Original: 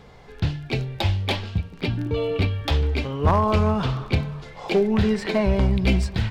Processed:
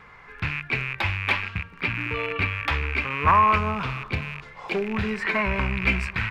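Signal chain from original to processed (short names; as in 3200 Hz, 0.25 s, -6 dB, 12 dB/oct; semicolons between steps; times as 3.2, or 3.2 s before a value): rattling part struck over -31 dBFS, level -23 dBFS; band shelf 1600 Hz +15.5 dB, from 3.57 s +9 dB, from 5.19 s +15.5 dB; gain -7.5 dB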